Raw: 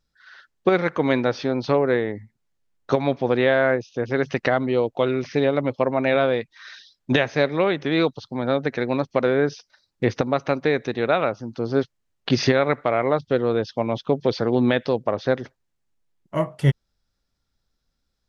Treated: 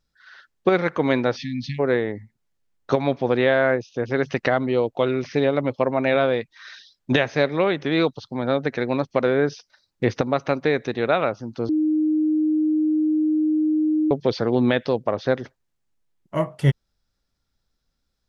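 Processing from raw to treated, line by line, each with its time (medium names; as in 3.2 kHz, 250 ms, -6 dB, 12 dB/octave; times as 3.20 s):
1.36–1.79 s: spectral selection erased 260–1700 Hz
11.69–14.11 s: bleep 309 Hz -17 dBFS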